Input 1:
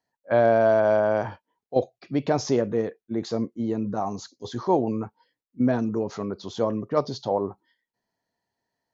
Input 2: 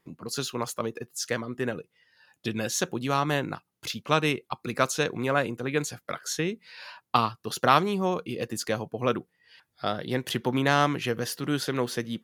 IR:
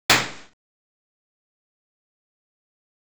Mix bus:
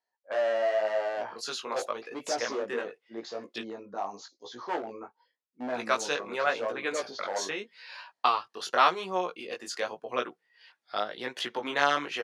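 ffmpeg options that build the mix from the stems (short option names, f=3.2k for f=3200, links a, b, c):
-filter_complex "[0:a]volume=18.5dB,asoftclip=hard,volume=-18.5dB,volume=-1dB[a];[1:a]adelay=1100,volume=2dB,asplit=3[b][c][d];[b]atrim=end=3.63,asetpts=PTS-STARTPTS,afade=t=out:st=3.626:d=0.004:c=hsin[e];[c]atrim=start=3.63:end=5.68,asetpts=PTS-STARTPTS,volume=0[f];[d]atrim=start=5.68,asetpts=PTS-STARTPTS,afade=t=in:d=0.004:c=hsin[g];[e][f][g]concat=n=3:v=0:a=1[h];[a][h]amix=inputs=2:normalize=0,flanger=delay=16:depth=5.3:speed=0.88,highpass=530,lowpass=6.2k"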